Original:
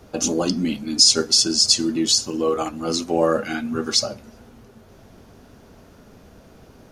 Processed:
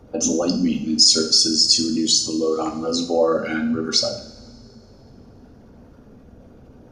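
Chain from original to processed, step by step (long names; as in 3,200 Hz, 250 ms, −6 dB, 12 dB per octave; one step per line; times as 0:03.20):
spectral envelope exaggerated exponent 1.5
coupled-rooms reverb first 0.56 s, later 2.6 s, from −21 dB, DRR 3.5 dB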